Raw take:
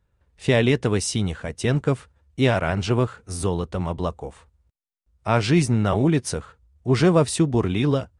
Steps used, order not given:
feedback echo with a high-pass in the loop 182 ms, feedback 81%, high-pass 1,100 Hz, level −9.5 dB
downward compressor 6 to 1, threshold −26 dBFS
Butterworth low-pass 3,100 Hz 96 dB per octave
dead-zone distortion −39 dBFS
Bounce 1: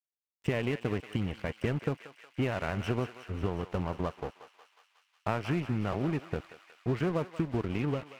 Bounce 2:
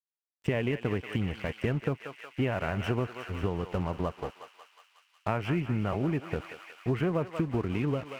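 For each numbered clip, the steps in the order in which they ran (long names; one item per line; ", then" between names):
Butterworth low-pass, then downward compressor, then dead-zone distortion, then feedback echo with a high-pass in the loop
Butterworth low-pass, then dead-zone distortion, then feedback echo with a high-pass in the loop, then downward compressor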